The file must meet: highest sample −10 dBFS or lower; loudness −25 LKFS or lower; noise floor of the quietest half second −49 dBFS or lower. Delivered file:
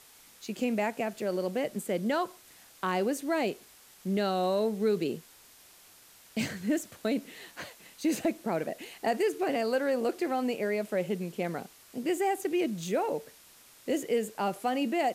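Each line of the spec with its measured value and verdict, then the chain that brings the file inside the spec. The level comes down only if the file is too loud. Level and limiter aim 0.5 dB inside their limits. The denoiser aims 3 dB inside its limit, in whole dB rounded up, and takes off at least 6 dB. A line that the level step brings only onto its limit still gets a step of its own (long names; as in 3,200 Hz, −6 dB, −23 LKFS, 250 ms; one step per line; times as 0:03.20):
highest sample −16.0 dBFS: in spec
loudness −31.0 LKFS: in spec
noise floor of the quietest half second −56 dBFS: in spec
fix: no processing needed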